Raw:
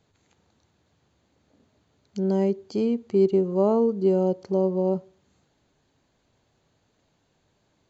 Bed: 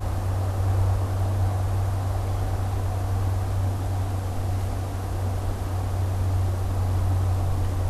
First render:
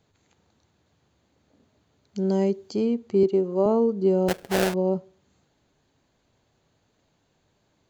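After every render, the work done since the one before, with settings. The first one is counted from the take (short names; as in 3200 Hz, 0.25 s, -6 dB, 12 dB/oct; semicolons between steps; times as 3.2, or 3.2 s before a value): 2.18–2.72 high shelf 3600 Hz -> 4400 Hz +8 dB; 3.23–3.66 HPF 210 Hz; 4.28–4.74 sample-rate reducer 1100 Hz, jitter 20%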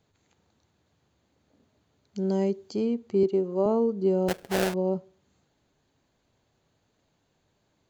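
gain -3 dB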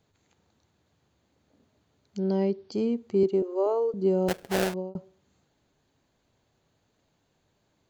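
2.18–2.72 steep low-pass 5600 Hz 72 dB/oct; 3.42–3.94 Chebyshev high-pass 290 Hz, order 6; 4.53–4.95 fade out equal-power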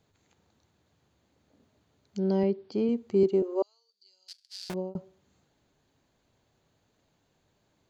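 2.43–2.89 BPF 110–3900 Hz; 3.62–4.7 ladder band-pass 4900 Hz, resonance 80%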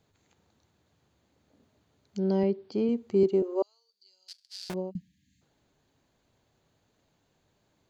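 4.91–5.42 spectral delete 310–1600 Hz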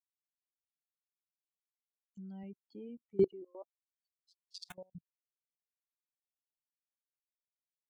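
per-bin expansion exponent 3; level quantiser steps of 23 dB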